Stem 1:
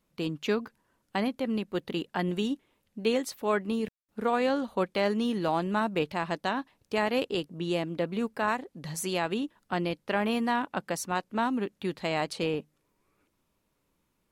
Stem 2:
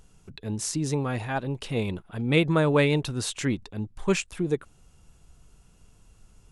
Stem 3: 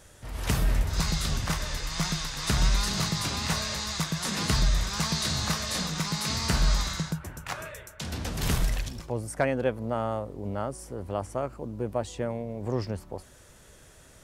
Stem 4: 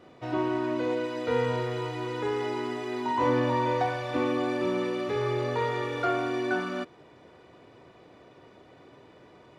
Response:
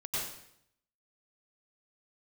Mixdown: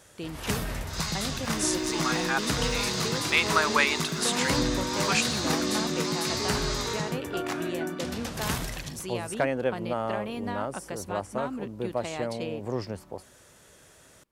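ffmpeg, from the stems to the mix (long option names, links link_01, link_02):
-filter_complex "[0:a]acompressor=threshold=-26dB:ratio=6,volume=-4.5dB[link_01];[1:a]highpass=frequency=1200:width_type=q:width=1.6,aeval=exprs='val(0)*gte(abs(val(0)),0.00299)':channel_layout=same,adelay=1000,volume=2.5dB[link_02];[2:a]highpass=frequency=170:poles=1,volume=0dB[link_03];[3:a]equalizer=frequency=280:width_type=o:width=1:gain=10,adelay=1300,volume=-10dB[link_04];[link_01][link_02][link_03][link_04]amix=inputs=4:normalize=0"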